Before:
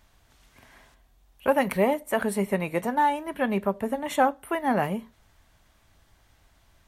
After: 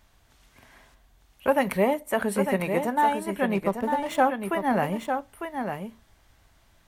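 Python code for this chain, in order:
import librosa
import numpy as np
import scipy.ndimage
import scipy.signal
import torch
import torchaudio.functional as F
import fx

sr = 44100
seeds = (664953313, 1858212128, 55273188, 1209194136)

y = fx.backlash(x, sr, play_db=-35.0, at=(3.55, 4.2))
y = y + 10.0 ** (-6.5 / 20.0) * np.pad(y, (int(901 * sr / 1000.0), 0))[:len(y)]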